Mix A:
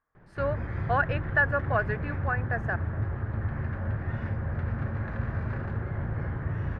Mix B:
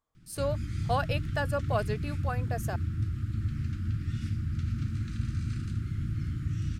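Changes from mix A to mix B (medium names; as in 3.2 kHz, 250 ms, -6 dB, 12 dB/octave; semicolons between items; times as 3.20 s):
background: add Chebyshev band-stop 320–1300 Hz, order 4; master: remove resonant low-pass 1.7 kHz, resonance Q 4.8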